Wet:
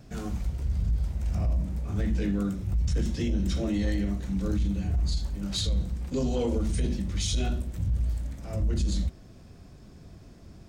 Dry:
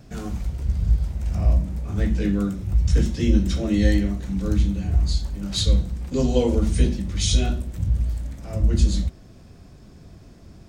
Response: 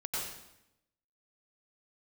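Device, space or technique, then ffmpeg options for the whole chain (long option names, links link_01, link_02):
soft clipper into limiter: -af "asoftclip=type=tanh:threshold=-10dB,alimiter=limit=-17.5dB:level=0:latency=1:release=14,volume=-3dB"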